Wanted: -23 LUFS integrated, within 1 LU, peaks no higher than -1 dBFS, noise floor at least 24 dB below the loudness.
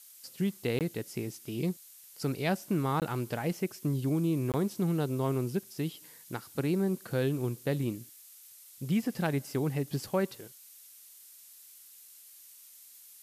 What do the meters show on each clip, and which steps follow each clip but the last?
dropouts 3; longest dropout 18 ms; noise floor -54 dBFS; noise floor target -57 dBFS; loudness -32.5 LUFS; peak level -15.5 dBFS; loudness target -23.0 LUFS
-> interpolate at 0.79/3.00/4.52 s, 18 ms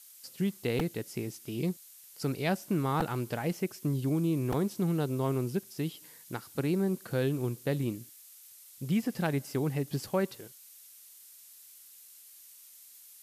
dropouts 0; noise floor -54 dBFS; noise floor target -57 dBFS
-> noise reduction 6 dB, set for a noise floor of -54 dBFS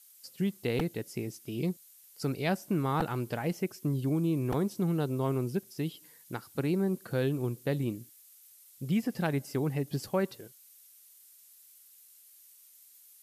noise floor -58 dBFS; loudness -32.5 LUFS; peak level -15.5 dBFS; loudness target -23.0 LUFS
-> trim +9.5 dB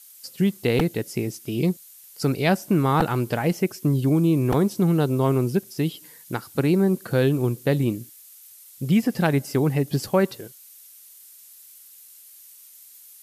loudness -23.0 LUFS; peak level -6.0 dBFS; noise floor -48 dBFS

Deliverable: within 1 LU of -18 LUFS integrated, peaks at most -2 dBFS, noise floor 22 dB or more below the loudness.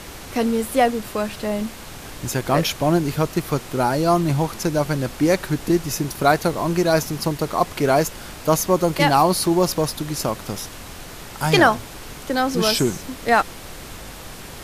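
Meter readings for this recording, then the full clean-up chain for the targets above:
dropouts 1; longest dropout 1.6 ms; noise floor -37 dBFS; noise floor target -43 dBFS; loudness -20.5 LUFS; peak level -1.5 dBFS; loudness target -18.0 LUFS
-> interpolate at 9.47 s, 1.6 ms; noise print and reduce 6 dB; trim +2.5 dB; peak limiter -2 dBFS

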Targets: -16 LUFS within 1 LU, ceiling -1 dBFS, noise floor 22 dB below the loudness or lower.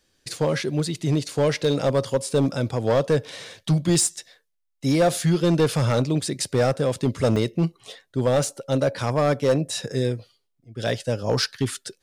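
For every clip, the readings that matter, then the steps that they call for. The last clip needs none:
clipped samples 1.3%; clipping level -13.5 dBFS; dropouts 2; longest dropout 2.0 ms; loudness -23.0 LUFS; peak level -13.5 dBFS; loudness target -16.0 LUFS
-> clip repair -13.5 dBFS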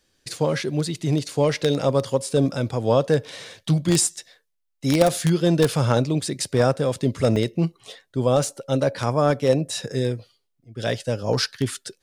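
clipped samples 0.0%; dropouts 2; longest dropout 2.0 ms
-> interpolate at 7.36/8.44 s, 2 ms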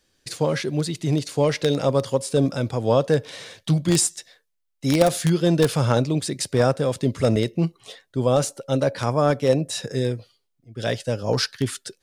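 dropouts 0; loudness -22.5 LUFS; peak level -4.5 dBFS; loudness target -16.0 LUFS
-> trim +6.5 dB; peak limiter -1 dBFS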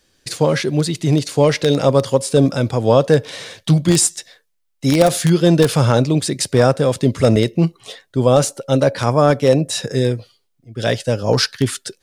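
loudness -16.5 LUFS; peak level -1.0 dBFS; noise floor -67 dBFS

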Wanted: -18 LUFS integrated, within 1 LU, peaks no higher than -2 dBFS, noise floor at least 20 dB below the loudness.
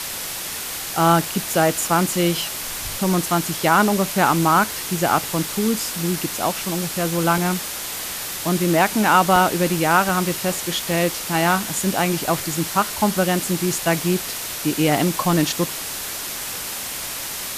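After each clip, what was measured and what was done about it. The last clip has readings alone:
dropouts 6; longest dropout 1.5 ms; noise floor -29 dBFS; noise floor target -41 dBFS; loudness -20.5 LUFS; peak level -3.5 dBFS; loudness target -18.0 LUFS
-> interpolate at 1.88/4.29/7.38/9.36/10.09/10.91 s, 1.5 ms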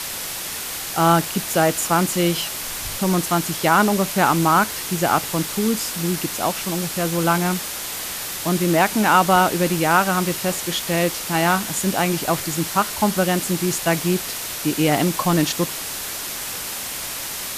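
dropouts 0; noise floor -29 dBFS; noise floor target -41 dBFS
-> noise reduction 12 dB, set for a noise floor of -29 dBFS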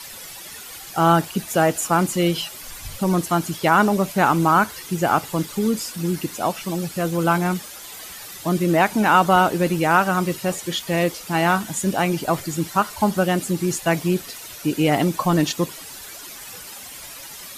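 noise floor -38 dBFS; noise floor target -41 dBFS
-> noise reduction 6 dB, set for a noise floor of -38 dBFS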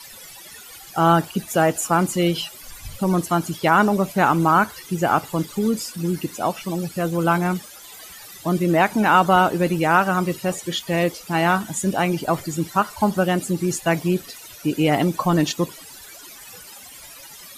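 noise floor -42 dBFS; loudness -21.0 LUFS; peak level -3.5 dBFS; loudness target -18.0 LUFS
-> trim +3 dB; peak limiter -2 dBFS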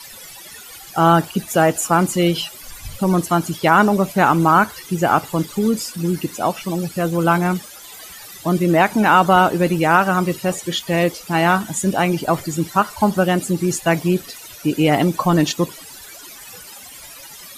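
loudness -18.0 LUFS; peak level -2.0 dBFS; noise floor -39 dBFS

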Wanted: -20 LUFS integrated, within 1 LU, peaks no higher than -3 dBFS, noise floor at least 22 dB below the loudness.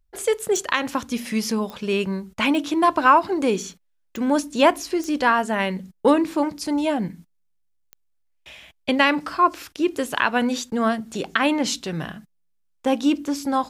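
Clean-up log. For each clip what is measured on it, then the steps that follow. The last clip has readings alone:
clicks found 6; loudness -22.0 LUFS; peak level -4.0 dBFS; loudness target -20.0 LUFS
-> de-click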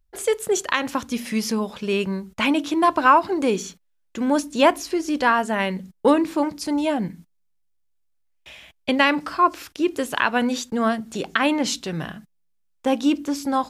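clicks found 0; loudness -22.0 LUFS; peak level -4.0 dBFS; loudness target -20.0 LUFS
-> trim +2 dB; peak limiter -3 dBFS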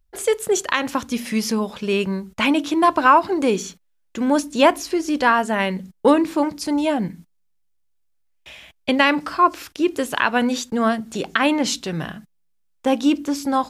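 loudness -20.5 LUFS; peak level -3.0 dBFS; noise floor -65 dBFS

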